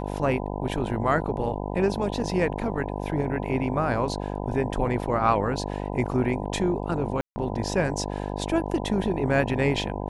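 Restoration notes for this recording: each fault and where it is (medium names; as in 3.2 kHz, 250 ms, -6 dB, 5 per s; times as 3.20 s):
buzz 50 Hz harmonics 20 -31 dBFS
7.21–7.36 s: dropout 150 ms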